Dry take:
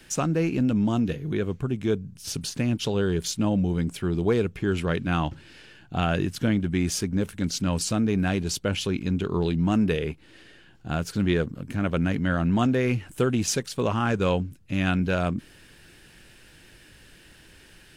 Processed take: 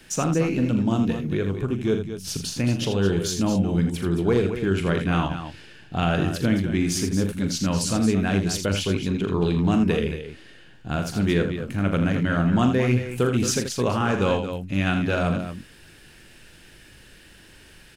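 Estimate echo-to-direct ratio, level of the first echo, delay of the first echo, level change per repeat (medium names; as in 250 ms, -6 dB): -4.0 dB, -9.0 dB, 41 ms, no regular repeats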